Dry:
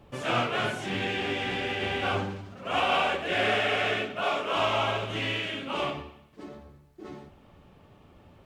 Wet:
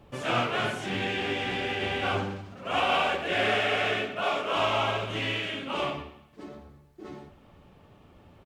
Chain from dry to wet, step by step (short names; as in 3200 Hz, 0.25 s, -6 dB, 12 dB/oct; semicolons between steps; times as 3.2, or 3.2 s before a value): speakerphone echo 0.12 s, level -14 dB